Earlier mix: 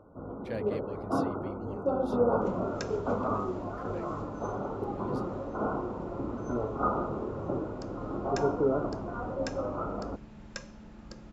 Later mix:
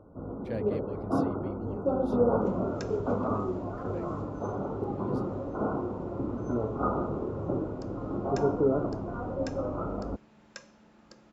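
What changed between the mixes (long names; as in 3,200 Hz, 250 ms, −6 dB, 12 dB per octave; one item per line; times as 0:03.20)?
second sound: add high-pass filter 900 Hz 6 dB per octave
master: add tilt shelving filter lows +4 dB, about 640 Hz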